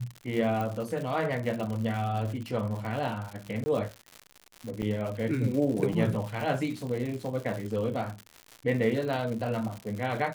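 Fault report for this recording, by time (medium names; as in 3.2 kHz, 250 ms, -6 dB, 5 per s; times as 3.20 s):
crackle 150 per s -34 dBFS
0.61 s: pop
3.64–3.66 s: dropout 20 ms
4.82 s: dropout 3.9 ms
5.93 s: dropout 2.9 ms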